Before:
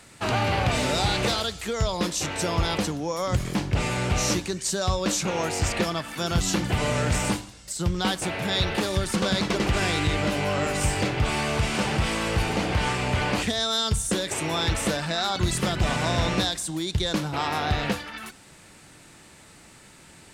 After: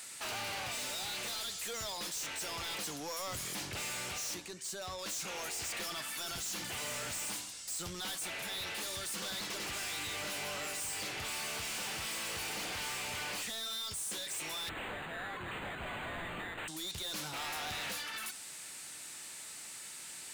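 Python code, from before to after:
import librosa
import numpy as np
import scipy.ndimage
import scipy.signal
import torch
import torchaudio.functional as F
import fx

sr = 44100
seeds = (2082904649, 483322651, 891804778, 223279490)

y = fx.tilt_eq(x, sr, slope=4.0)
y = fx.rider(y, sr, range_db=4, speed_s=0.5)
y = fx.high_shelf(y, sr, hz=2300.0, db=-10.0, at=(4.34, 4.99))
y = 10.0 ** (-30.5 / 20.0) * np.tanh(y / 10.0 ** (-30.5 / 20.0))
y = fx.resample_linear(y, sr, factor=8, at=(14.69, 16.68))
y = y * librosa.db_to_amplitude(-7.0)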